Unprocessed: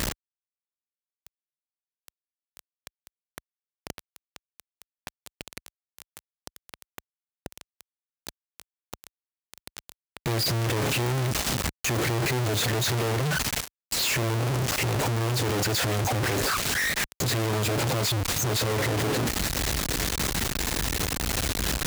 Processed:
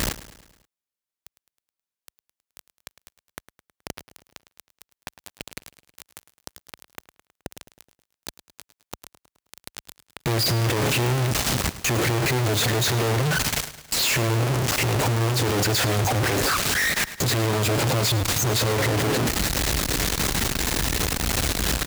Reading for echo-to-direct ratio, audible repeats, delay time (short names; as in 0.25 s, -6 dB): -14.0 dB, 4, 0.106 s